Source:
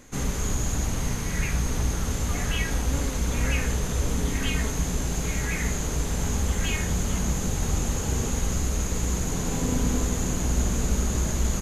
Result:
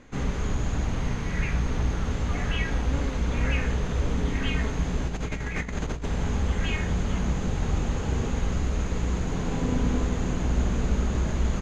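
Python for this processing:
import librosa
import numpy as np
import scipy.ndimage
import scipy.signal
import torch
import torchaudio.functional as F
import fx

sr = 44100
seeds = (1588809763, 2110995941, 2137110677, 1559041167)

y = scipy.signal.sosfilt(scipy.signal.butter(2, 3300.0, 'lowpass', fs=sr, output='sos'), x)
y = fx.over_compress(y, sr, threshold_db=-29.0, ratio=-0.5, at=(5.07, 6.06))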